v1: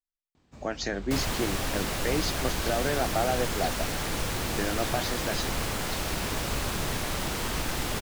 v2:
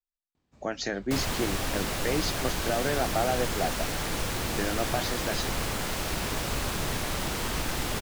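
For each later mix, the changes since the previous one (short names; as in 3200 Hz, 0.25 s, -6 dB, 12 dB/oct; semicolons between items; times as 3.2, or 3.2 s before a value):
first sound -10.5 dB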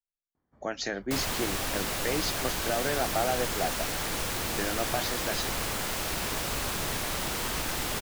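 first sound: add polynomial smoothing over 41 samples; second sound: add high shelf 10000 Hz +4.5 dB; master: add low shelf 340 Hz -5 dB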